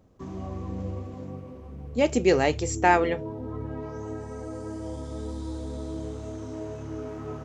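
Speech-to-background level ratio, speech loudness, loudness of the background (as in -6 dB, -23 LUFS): 12.5 dB, -24.0 LUFS, -36.5 LUFS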